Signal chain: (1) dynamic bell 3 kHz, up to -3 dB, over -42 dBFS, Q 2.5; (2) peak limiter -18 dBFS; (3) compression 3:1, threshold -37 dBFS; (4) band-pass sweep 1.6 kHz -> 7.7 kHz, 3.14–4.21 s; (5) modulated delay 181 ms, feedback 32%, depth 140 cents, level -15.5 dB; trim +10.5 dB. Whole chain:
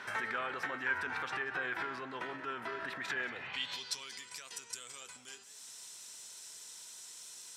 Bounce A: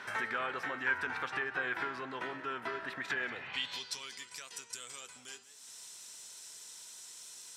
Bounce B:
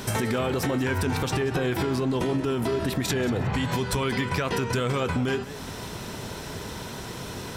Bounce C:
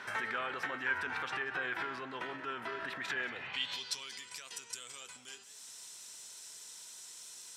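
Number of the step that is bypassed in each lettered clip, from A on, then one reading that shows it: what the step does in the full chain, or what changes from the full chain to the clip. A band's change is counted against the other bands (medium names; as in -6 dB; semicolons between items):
2, mean gain reduction 2.5 dB; 4, 125 Hz band +22.5 dB; 1, 4 kHz band +1.5 dB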